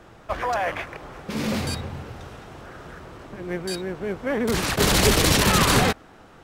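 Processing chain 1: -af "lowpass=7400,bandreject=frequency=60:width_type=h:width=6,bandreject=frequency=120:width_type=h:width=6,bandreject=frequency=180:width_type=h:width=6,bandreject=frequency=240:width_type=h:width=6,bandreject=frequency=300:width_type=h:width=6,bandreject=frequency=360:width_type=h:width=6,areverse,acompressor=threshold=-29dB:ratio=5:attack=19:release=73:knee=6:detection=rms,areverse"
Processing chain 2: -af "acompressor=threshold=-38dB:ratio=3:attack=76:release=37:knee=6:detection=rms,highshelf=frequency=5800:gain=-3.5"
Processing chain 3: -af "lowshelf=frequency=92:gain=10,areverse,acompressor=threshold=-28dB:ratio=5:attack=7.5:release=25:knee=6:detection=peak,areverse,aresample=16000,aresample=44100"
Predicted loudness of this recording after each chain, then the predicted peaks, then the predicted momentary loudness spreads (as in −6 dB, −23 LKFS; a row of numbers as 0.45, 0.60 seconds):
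−32.0, −34.0, −30.5 LKFS; −17.5, −18.0, −15.0 dBFS; 13, 11, 12 LU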